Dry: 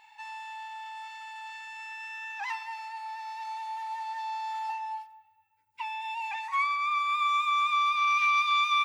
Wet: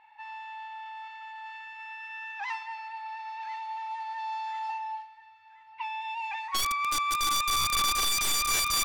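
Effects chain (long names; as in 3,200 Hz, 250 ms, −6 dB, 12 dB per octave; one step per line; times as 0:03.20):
delay with a high-pass on its return 1,035 ms, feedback 45%, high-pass 1,400 Hz, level −12 dB
wrap-around overflow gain 22 dB
low-pass that shuts in the quiet parts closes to 1,900 Hz, open at −25.5 dBFS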